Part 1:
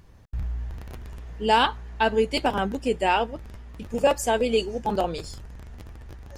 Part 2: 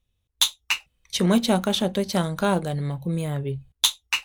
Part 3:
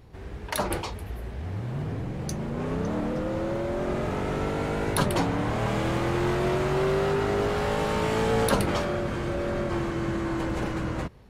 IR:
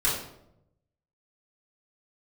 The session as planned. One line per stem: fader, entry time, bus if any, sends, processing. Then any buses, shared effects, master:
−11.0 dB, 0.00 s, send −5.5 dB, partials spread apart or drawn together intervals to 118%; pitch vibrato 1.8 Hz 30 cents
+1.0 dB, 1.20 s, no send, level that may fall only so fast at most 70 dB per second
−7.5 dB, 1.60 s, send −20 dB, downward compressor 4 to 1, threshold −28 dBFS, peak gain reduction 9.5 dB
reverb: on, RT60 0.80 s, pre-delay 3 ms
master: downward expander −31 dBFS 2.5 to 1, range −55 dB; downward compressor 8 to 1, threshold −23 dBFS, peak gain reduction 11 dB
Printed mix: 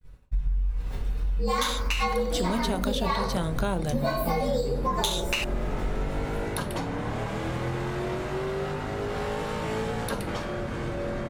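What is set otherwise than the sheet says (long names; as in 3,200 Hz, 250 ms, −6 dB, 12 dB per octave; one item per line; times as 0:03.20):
stem 1 −11.0 dB → +1.0 dB
stem 3 −7.5 dB → −0.5 dB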